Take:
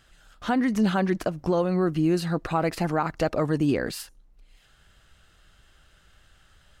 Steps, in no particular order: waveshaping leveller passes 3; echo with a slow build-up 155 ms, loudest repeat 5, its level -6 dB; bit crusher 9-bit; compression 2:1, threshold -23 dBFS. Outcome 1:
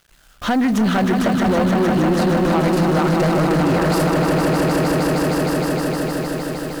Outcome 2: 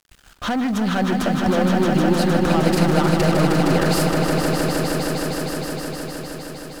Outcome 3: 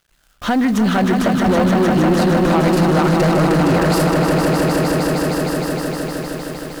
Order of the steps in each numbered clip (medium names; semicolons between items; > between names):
echo with a slow build-up > compression > bit crusher > waveshaping leveller; waveshaping leveller > compression > bit crusher > echo with a slow build-up; compression > echo with a slow build-up > bit crusher > waveshaping leveller